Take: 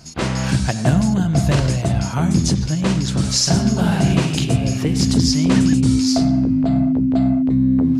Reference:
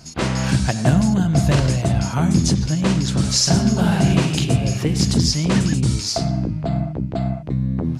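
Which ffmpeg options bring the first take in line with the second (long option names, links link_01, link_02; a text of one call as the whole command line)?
ffmpeg -i in.wav -af "bandreject=frequency=260:width=30" out.wav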